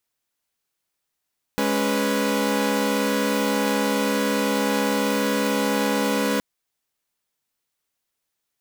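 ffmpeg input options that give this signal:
-f lavfi -i "aevalsrc='0.0794*((2*mod(207.65*t,1)-1)+(2*mod(277.18*t,1)-1)+(2*mod(493.88*t,1)-1))':d=4.82:s=44100"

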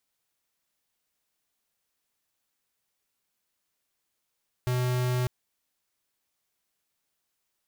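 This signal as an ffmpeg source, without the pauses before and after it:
-f lavfi -i "aevalsrc='0.0473*(2*lt(mod(125*t,1),0.5)-1)':d=0.6:s=44100"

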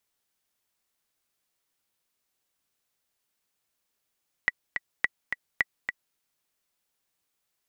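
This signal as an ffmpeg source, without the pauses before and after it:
-f lavfi -i "aevalsrc='pow(10,(-9-6.5*gte(mod(t,2*60/213),60/213))/20)*sin(2*PI*1950*mod(t,60/213))*exp(-6.91*mod(t,60/213)/0.03)':d=1.69:s=44100"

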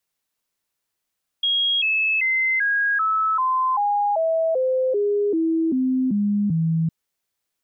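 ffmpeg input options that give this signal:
-f lavfi -i "aevalsrc='0.133*clip(min(mod(t,0.39),0.39-mod(t,0.39))/0.005,0,1)*sin(2*PI*3280*pow(2,-floor(t/0.39)/3)*mod(t,0.39))':d=5.46:s=44100"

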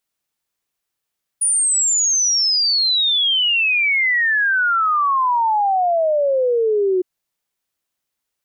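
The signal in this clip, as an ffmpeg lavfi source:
-f lavfi -i "aevalsrc='0.2*clip(min(t,5.61-t)/0.01,0,1)*sin(2*PI*9700*5.61/log(360/9700)*(exp(log(360/9700)*t/5.61)-1))':d=5.61:s=44100"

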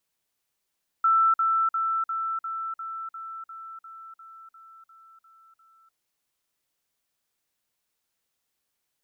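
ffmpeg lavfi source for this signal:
-f lavfi -i "aevalsrc='pow(10,(-17-3*floor(t/0.35))/20)*sin(2*PI*1330*t)*clip(min(mod(t,0.35),0.3-mod(t,0.35))/0.005,0,1)':d=4.9:s=44100"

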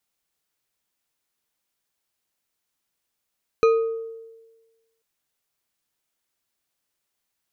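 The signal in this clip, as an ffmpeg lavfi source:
-f lavfi -i "aevalsrc='0.251*pow(10,-3*t/1.29)*sin(2*PI*453*t)+0.1*pow(10,-3*t/0.634)*sin(2*PI*1248.9*t)+0.0398*pow(10,-3*t/0.396)*sin(2*PI*2448*t)+0.0158*pow(10,-3*t/0.279)*sin(2*PI*4046.6*t)+0.00631*pow(10,-3*t/0.21)*sin(2*PI*6043*t)':d=1.39:s=44100"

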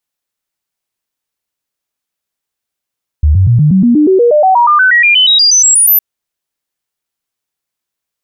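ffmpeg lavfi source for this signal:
-f lavfi -i "aevalsrc='0.631*clip(min(mod(t,0.12),0.12-mod(t,0.12))/0.005,0,1)*sin(2*PI*75.1*pow(2,floor(t/0.12)/3)*mod(t,0.12))':d=2.76:s=44100"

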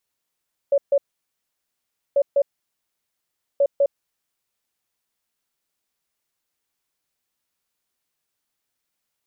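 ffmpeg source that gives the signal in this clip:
-f lavfi -i "aevalsrc='0.211*sin(2*PI*562*t)*clip(min(mod(mod(t,1.44),0.2),0.06-mod(mod(t,1.44),0.2))/0.005,0,1)*lt(mod(t,1.44),0.4)':d=4.32:s=44100"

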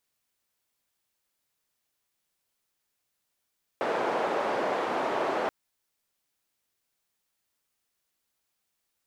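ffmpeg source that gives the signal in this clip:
-f lavfi -i "anoisesrc=c=white:d=1.68:r=44100:seed=1,highpass=f=490,lowpass=f=650,volume=-4.5dB"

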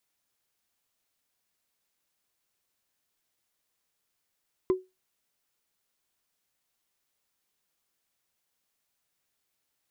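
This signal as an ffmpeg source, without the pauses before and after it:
-f lavfi -i "aevalsrc='0.141*pow(10,-3*t/0.22)*sin(2*PI*372*t)+0.0355*pow(10,-3*t/0.065)*sin(2*PI*1025.6*t)+0.00891*pow(10,-3*t/0.029)*sin(2*PI*2010.3*t)+0.00224*pow(10,-3*t/0.016)*sin(2*PI*3323.1*t)+0.000562*pow(10,-3*t/0.01)*sin(2*PI*4962.5*t)':d=0.45:s=44100"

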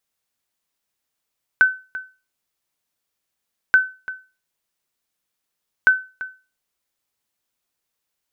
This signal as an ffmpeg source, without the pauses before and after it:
-f lavfi -i "aevalsrc='0.531*(sin(2*PI*1520*mod(t,2.13))*exp(-6.91*mod(t,2.13)/0.31)+0.15*sin(2*PI*1520*max(mod(t,2.13)-0.34,0))*exp(-6.91*max(mod(t,2.13)-0.34,0)/0.31))':d=6.39:s=44100"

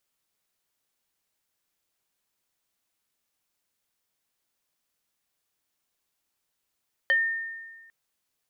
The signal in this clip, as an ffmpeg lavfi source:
-f lavfi -i "aevalsrc='0.133*pow(10,-3*t/1.43)*sin(2*PI*1820*t+0.61*pow(10,-3*t/0.14)*sin(2*PI*0.7*1820*t))':d=0.8:s=44100"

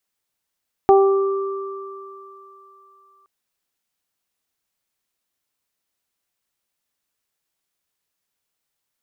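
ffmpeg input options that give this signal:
-f lavfi -i "aevalsrc='0.355*pow(10,-3*t/2.44)*sin(2*PI*391*t)+0.316*pow(10,-3*t/0.59)*sin(2*PI*782*t)+0.0708*pow(10,-3*t/4.54)*sin(2*PI*1173*t)':d=2.37:s=44100"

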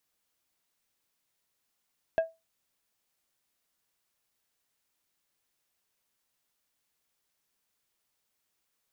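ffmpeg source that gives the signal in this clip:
-f lavfi -i "aevalsrc='0.119*pow(10,-3*t/0.22)*sin(2*PI*653*t)+0.0316*pow(10,-3*t/0.116)*sin(2*PI*1632.5*t)+0.00841*pow(10,-3*t/0.083)*sin(2*PI*2612*t)+0.00224*pow(10,-3*t/0.071)*sin(2*PI*3265*t)+0.000596*pow(10,-3*t/0.059)*sin(2*PI*4244.5*t)':d=0.89:s=44100"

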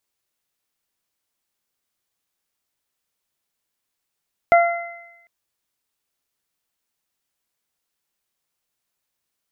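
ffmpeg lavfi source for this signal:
-f lavfi -i "aevalsrc='0.398*pow(10,-3*t/0.82)*sin(2*PI*686*t)+0.119*pow(10,-3*t/0.83)*sin(2*PI*1372*t)+0.126*pow(10,-3*t/1.23)*sin(2*PI*2058*t)':d=0.75:s=44100"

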